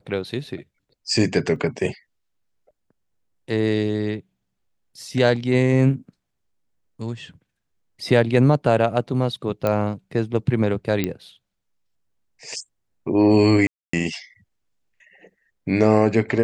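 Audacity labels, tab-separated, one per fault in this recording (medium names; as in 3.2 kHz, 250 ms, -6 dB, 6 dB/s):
1.560000	1.560000	dropout 2.7 ms
9.670000	9.670000	pop -10 dBFS
11.040000	11.040000	pop -9 dBFS
13.670000	13.930000	dropout 264 ms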